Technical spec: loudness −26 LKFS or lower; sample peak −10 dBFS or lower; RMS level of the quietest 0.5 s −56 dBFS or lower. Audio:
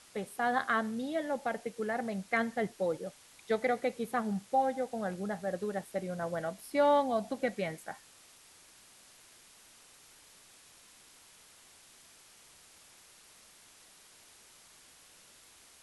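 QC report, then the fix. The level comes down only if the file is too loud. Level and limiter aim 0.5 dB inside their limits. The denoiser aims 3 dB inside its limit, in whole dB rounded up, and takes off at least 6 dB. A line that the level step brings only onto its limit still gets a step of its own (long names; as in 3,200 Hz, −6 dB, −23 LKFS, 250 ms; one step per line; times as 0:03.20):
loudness −33.5 LKFS: in spec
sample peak −17.0 dBFS: in spec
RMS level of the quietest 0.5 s −59 dBFS: in spec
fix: no processing needed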